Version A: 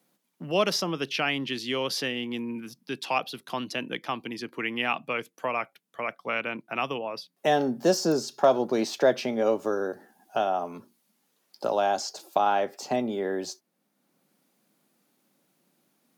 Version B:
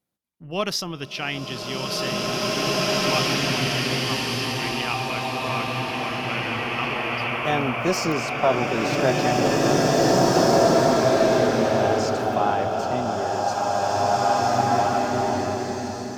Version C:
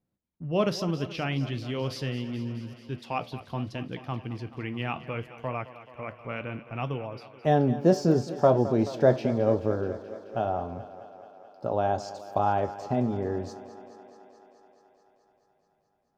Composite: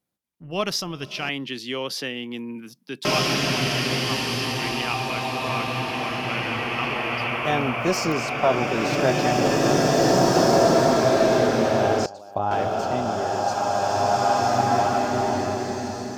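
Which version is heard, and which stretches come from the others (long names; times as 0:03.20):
B
0:01.29–0:03.05: punch in from A
0:12.06–0:12.51: punch in from C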